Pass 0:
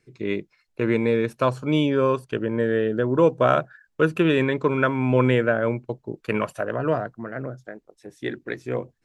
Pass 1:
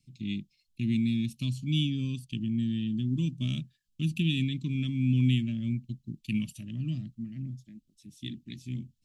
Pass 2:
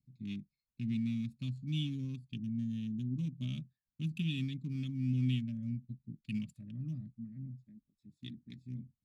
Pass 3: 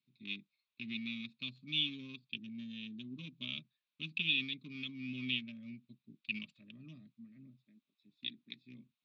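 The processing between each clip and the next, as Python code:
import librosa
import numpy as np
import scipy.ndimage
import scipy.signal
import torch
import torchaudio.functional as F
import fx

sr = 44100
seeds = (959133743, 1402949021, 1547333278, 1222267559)

y1 = scipy.signal.sosfilt(scipy.signal.ellip(3, 1.0, 40, [230.0, 3000.0], 'bandstop', fs=sr, output='sos'), x)
y2 = fx.wiener(y1, sr, points=15)
y2 = fx.notch_comb(y2, sr, f0_hz=340.0)
y2 = y2 * 10.0 ** (-7.0 / 20.0)
y3 = fx.cabinet(y2, sr, low_hz=470.0, low_slope=12, high_hz=4400.0, hz=(520.0, 800.0, 1100.0, 1700.0, 2500.0, 3700.0), db=(-3, -9, 3, -4, 9, 9))
y3 = y3 * 10.0 ** (4.5 / 20.0)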